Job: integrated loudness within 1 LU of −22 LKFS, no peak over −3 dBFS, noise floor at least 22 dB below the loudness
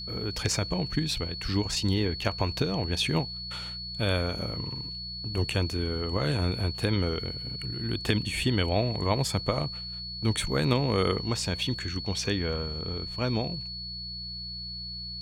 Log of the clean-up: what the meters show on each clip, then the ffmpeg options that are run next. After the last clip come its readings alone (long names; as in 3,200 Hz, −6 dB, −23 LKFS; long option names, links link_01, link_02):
mains hum 60 Hz; hum harmonics up to 180 Hz; level of the hum −43 dBFS; interfering tone 4,400 Hz; level of the tone −36 dBFS; integrated loudness −29.5 LKFS; sample peak −9.5 dBFS; target loudness −22.0 LKFS
→ -af "bandreject=frequency=60:width_type=h:width=4,bandreject=frequency=120:width_type=h:width=4,bandreject=frequency=180:width_type=h:width=4"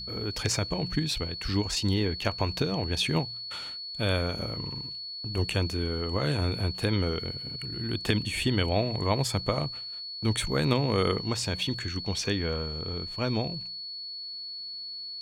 mains hum none found; interfering tone 4,400 Hz; level of the tone −36 dBFS
→ -af "bandreject=frequency=4400:width=30"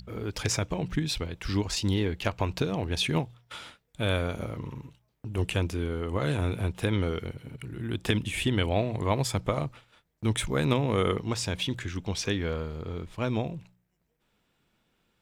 interfering tone none found; integrated loudness −30.0 LKFS; sample peak −10.0 dBFS; target loudness −22.0 LKFS
→ -af "volume=8dB,alimiter=limit=-3dB:level=0:latency=1"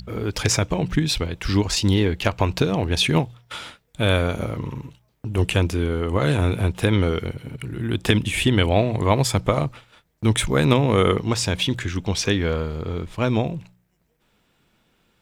integrated loudness −22.0 LKFS; sample peak −3.0 dBFS; background noise floor −67 dBFS